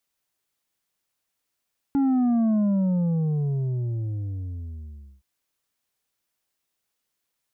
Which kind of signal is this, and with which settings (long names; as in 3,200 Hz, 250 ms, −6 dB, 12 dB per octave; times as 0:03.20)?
bass drop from 280 Hz, over 3.27 s, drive 5.5 dB, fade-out 2.72 s, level −19 dB